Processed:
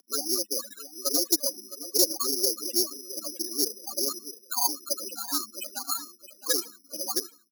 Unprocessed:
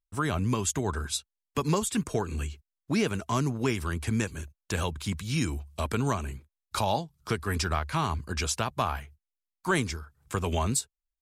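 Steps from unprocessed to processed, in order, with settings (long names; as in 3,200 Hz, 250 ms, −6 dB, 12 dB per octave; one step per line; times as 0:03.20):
converter with a step at zero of −40.5 dBFS
gate on every frequency bin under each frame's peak −30 dB strong
treble cut that deepens with the level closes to 2,200 Hz, closed at −22.5 dBFS
spectral peaks only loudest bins 4
time stretch by overlap-add 0.67×, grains 74 ms
repeating echo 664 ms, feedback 34%, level −14 dB
single-sideband voice off tune +130 Hz 180–2,900 Hz
bad sample-rate conversion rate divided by 8×, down none, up zero stuff
highs frequency-modulated by the lows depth 0.11 ms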